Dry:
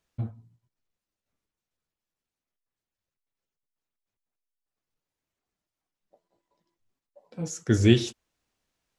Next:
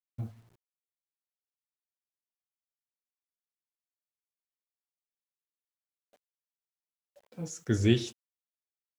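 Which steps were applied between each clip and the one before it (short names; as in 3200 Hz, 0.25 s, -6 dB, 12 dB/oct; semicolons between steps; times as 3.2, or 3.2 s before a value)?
bit-crush 10-bit; gain -5.5 dB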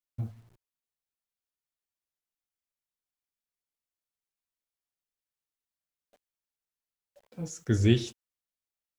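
low shelf 73 Hz +10.5 dB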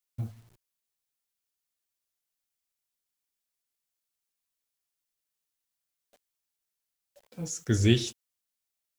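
high shelf 2900 Hz +8 dB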